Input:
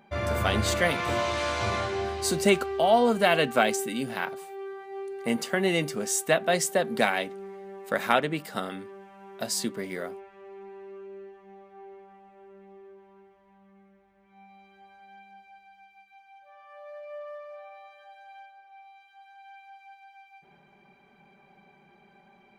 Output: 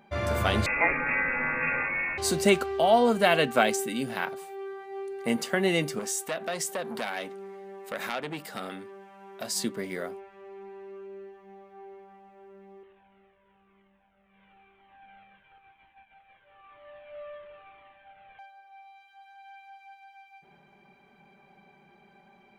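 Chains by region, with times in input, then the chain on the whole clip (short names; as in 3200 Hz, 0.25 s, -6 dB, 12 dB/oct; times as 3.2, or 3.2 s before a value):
0.66–2.18 switching spikes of -19.5 dBFS + HPF 85 Hz + inverted band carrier 2600 Hz
5.99–9.56 low shelf 170 Hz -6.5 dB + compressor 3:1, threshold -27 dBFS + core saturation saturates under 2000 Hz
12.83–18.39 CVSD 16 kbps + cascading flanger falling 1 Hz
whole clip: dry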